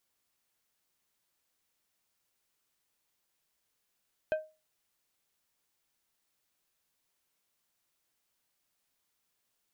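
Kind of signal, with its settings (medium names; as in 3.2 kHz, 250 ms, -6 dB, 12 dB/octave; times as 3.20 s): glass hit plate, lowest mode 624 Hz, decay 0.29 s, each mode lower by 9 dB, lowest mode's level -23.5 dB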